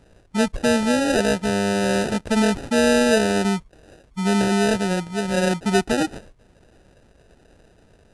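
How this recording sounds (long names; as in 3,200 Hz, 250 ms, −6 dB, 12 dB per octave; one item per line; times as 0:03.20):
aliases and images of a low sample rate 1,100 Hz, jitter 0%
AAC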